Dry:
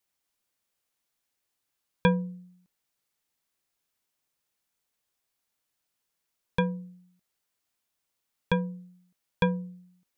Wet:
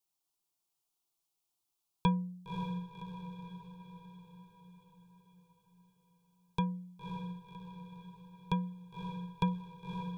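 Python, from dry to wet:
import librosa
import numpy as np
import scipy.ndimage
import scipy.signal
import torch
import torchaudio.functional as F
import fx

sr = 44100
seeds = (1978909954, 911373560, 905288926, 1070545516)

y = fx.fixed_phaser(x, sr, hz=350.0, stages=8)
y = fx.echo_diffused(y, sr, ms=555, feedback_pct=55, wet_db=-6.0)
y = y * librosa.db_to_amplitude(-3.0)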